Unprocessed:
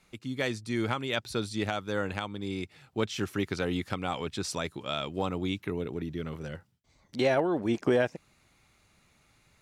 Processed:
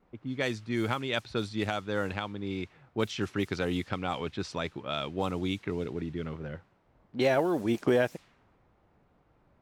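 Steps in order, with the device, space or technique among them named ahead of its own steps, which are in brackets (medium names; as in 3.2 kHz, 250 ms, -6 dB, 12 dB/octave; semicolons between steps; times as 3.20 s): cassette deck with a dynamic noise filter (white noise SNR 24 dB; level-controlled noise filter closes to 740 Hz, open at -24.5 dBFS)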